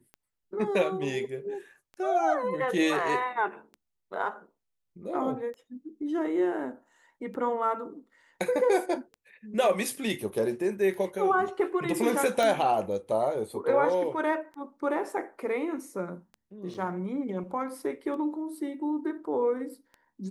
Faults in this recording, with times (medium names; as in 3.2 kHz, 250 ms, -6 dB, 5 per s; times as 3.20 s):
tick 33 1/3 rpm -32 dBFS
12.43 s: pop -14 dBFS
16.74–16.75 s: dropout 6.2 ms